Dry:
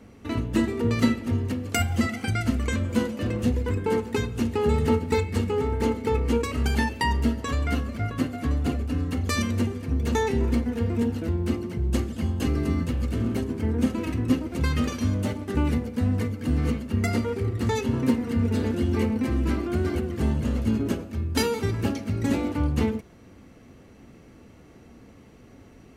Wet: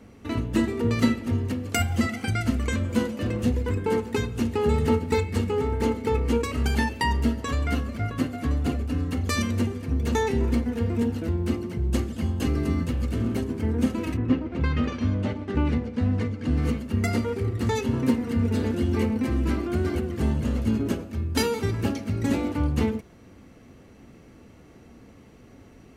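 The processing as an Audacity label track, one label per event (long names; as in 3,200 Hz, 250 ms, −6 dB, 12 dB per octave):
14.160000	16.560000	low-pass filter 2,400 Hz → 6,100 Hz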